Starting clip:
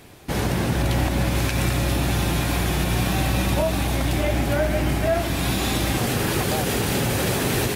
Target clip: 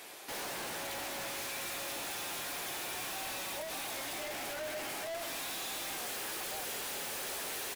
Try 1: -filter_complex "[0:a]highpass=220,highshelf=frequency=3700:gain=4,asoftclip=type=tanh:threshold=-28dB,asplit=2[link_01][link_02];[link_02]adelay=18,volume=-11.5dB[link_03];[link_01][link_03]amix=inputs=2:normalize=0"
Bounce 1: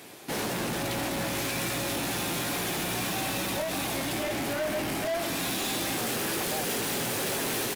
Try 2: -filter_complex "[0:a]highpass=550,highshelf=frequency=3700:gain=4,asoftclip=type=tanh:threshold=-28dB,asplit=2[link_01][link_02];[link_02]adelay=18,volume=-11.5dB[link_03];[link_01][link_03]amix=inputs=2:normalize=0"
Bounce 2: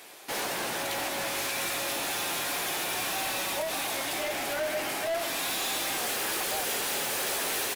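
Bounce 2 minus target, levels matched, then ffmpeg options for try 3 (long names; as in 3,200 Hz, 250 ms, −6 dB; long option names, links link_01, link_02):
soft clipping: distortion −5 dB
-filter_complex "[0:a]highpass=550,highshelf=frequency=3700:gain=4,asoftclip=type=tanh:threshold=-39dB,asplit=2[link_01][link_02];[link_02]adelay=18,volume=-11.5dB[link_03];[link_01][link_03]amix=inputs=2:normalize=0"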